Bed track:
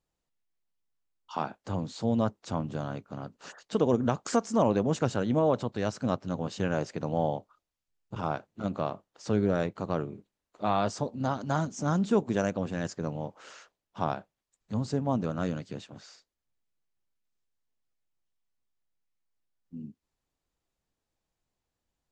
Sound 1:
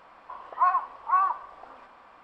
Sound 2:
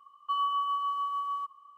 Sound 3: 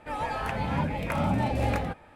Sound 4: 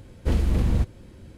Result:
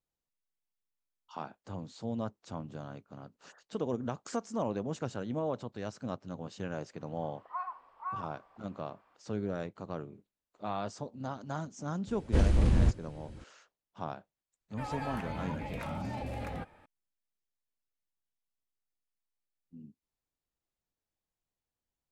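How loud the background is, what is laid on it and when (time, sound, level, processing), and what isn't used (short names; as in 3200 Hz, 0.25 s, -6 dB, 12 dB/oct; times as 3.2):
bed track -9 dB
6.93 add 1 -15.5 dB
12.07 add 4 -3 dB + downsampling 22050 Hz
14.71 add 3 -7 dB + limiter -22.5 dBFS
not used: 2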